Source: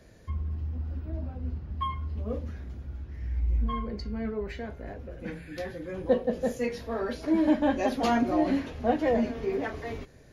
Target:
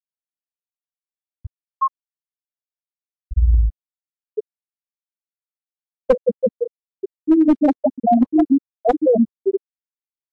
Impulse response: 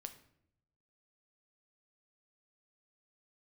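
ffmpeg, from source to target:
-af "aeval=exprs='val(0)+0.00562*(sin(2*PI*50*n/s)+sin(2*PI*2*50*n/s)/2+sin(2*PI*3*50*n/s)/3+sin(2*PI*4*50*n/s)/4+sin(2*PI*5*50*n/s)/5)':channel_layout=same,crystalizer=i=3:c=0,dynaudnorm=framelen=140:gausssize=9:maxgain=6.5dB,afftfilt=real='re*gte(hypot(re,im),1)':imag='im*gte(hypot(re,im),1)':win_size=1024:overlap=0.75,aeval=exprs='clip(val(0),-1,0.211)':channel_layout=same,acompressor=threshold=-18dB:ratio=8,volume=8.5dB" -ar 24000 -c:a libmp3lame -b:a 64k

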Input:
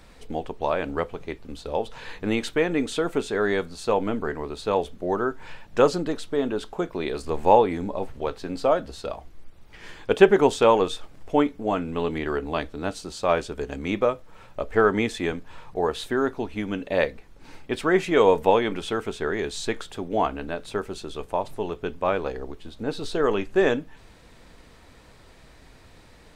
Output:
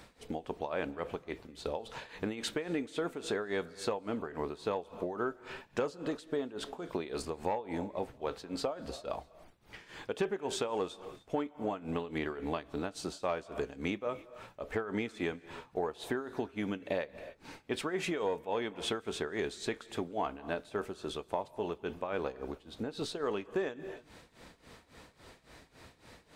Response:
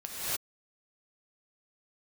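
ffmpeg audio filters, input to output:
-filter_complex "[0:a]tremolo=f=3.6:d=0.86,asplit=2[link_01][link_02];[1:a]atrim=start_sample=2205[link_03];[link_02][link_03]afir=irnorm=-1:irlink=0,volume=-27dB[link_04];[link_01][link_04]amix=inputs=2:normalize=0,asoftclip=type=tanh:threshold=-9dB,acompressor=threshold=-30dB:ratio=8,highpass=frequency=110:poles=1"

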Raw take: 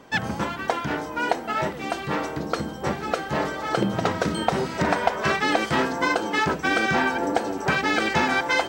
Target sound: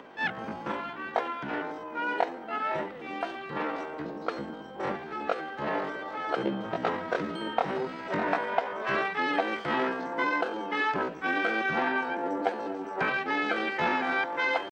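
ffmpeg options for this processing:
ffmpeg -i in.wav -filter_complex "[0:a]atempo=0.59,acompressor=mode=upward:threshold=-35dB:ratio=2.5,acrossover=split=210 3700:gain=0.178 1 0.1[link_01][link_02][link_03];[link_01][link_02][link_03]amix=inputs=3:normalize=0,volume=-5dB" out.wav

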